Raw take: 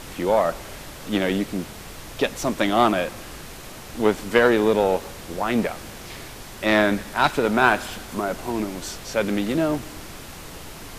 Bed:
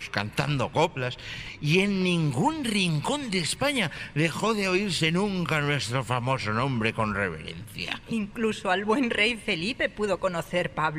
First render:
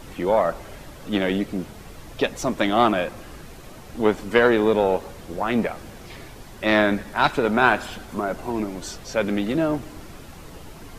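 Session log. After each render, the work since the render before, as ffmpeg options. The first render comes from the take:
ffmpeg -i in.wav -af "afftdn=noise_reduction=8:noise_floor=-39" out.wav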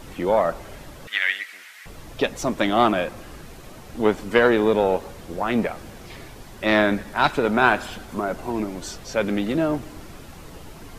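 ffmpeg -i in.wav -filter_complex "[0:a]asettb=1/sr,asplit=3[link_01][link_02][link_03];[link_01]atrim=end=1.074[link_04];[link_02]atrim=start=1.07:end=1.86,asetpts=PTS-STARTPTS,afade=type=in:duration=0.004:curve=qsin,afade=type=out:start_time=0.786:duration=0.004:curve=qsin,highpass=frequency=1900:width_type=q:width=4[link_05];[link_03]atrim=start=1.856[link_06];[link_04][link_05]acrossfade=duration=0.004:curve1=hsin:curve2=qsin[link_07];[link_07][link_06]acrossfade=duration=0.004:curve1=qsin:curve2=hsin" out.wav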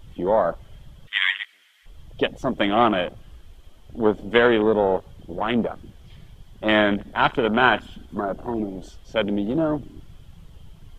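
ffmpeg -i in.wav -af "afwtdn=0.0398,equalizer=frequency=3200:width=5.5:gain=13" out.wav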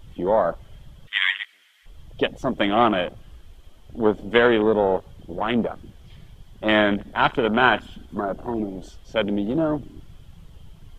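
ffmpeg -i in.wav -af anull out.wav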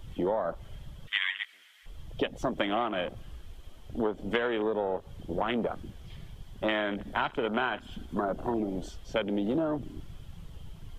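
ffmpeg -i in.wav -filter_complex "[0:a]acrossover=split=270[link_01][link_02];[link_01]alimiter=level_in=4dB:limit=-24dB:level=0:latency=1,volume=-4dB[link_03];[link_03][link_02]amix=inputs=2:normalize=0,acompressor=threshold=-25dB:ratio=16" out.wav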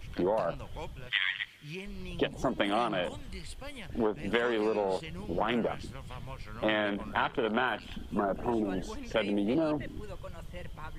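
ffmpeg -i in.wav -i bed.wav -filter_complex "[1:a]volume=-19.5dB[link_01];[0:a][link_01]amix=inputs=2:normalize=0" out.wav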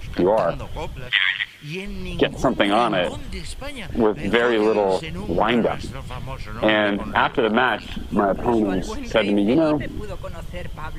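ffmpeg -i in.wav -af "volume=11dB,alimiter=limit=-1dB:level=0:latency=1" out.wav

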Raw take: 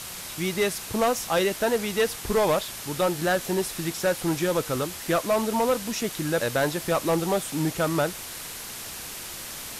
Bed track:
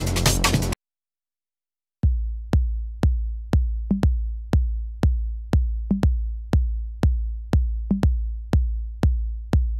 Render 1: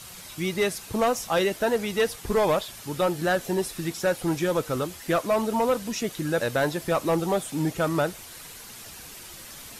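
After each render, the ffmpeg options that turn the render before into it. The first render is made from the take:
ffmpeg -i in.wav -af "afftdn=noise_reduction=8:noise_floor=-38" out.wav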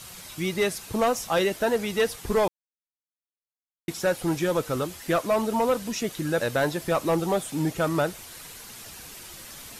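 ffmpeg -i in.wav -filter_complex "[0:a]asplit=3[link_01][link_02][link_03];[link_01]atrim=end=2.48,asetpts=PTS-STARTPTS,afade=type=out:start_time=2.476:duration=0.004:curve=hsin[link_04];[link_02]atrim=start=2.48:end=3.88,asetpts=PTS-STARTPTS,volume=0[link_05];[link_03]atrim=start=3.88,asetpts=PTS-STARTPTS,afade=type=in:duration=0.004:curve=hsin[link_06];[link_04][link_05][link_06]concat=n=3:v=0:a=1" out.wav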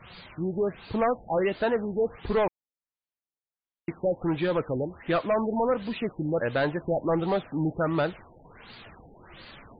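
ffmpeg -i in.wav -af "asoftclip=type=tanh:threshold=-16.5dB,afftfilt=real='re*lt(b*sr/1024,860*pow(4900/860,0.5+0.5*sin(2*PI*1.4*pts/sr)))':imag='im*lt(b*sr/1024,860*pow(4900/860,0.5+0.5*sin(2*PI*1.4*pts/sr)))':win_size=1024:overlap=0.75" out.wav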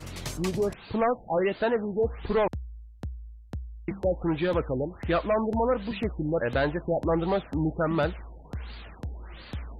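ffmpeg -i in.wav -i bed.wav -filter_complex "[1:a]volume=-16.5dB[link_01];[0:a][link_01]amix=inputs=2:normalize=0" out.wav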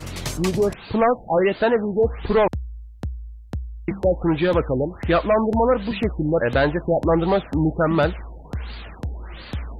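ffmpeg -i in.wav -af "volume=7dB" out.wav

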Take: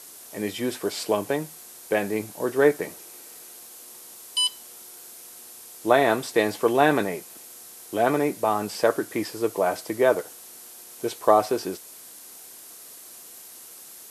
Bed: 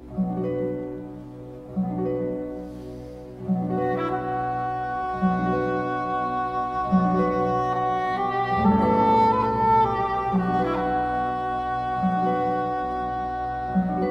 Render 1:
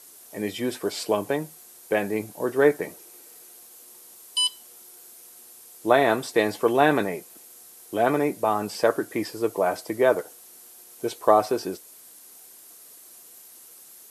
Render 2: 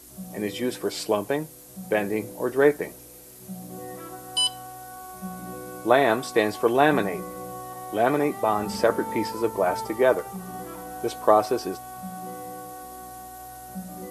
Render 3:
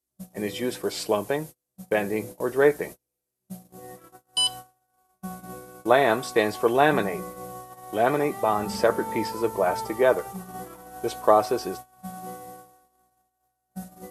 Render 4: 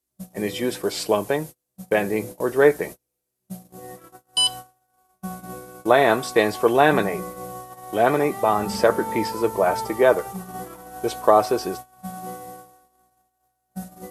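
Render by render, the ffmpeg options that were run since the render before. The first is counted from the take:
ffmpeg -i in.wav -af "afftdn=noise_reduction=6:noise_floor=-45" out.wav
ffmpeg -i in.wav -i bed.wav -filter_complex "[1:a]volume=-14dB[link_01];[0:a][link_01]amix=inputs=2:normalize=0" out.wav
ffmpeg -i in.wav -af "agate=range=-37dB:threshold=-36dB:ratio=16:detection=peak,equalizer=frequency=280:width=4.8:gain=-4.5" out.wav
ffmpeg -i in.wav -af "volume=3.5dB,alimiter=limit=-3dB:level=0:latency=1" out.wav

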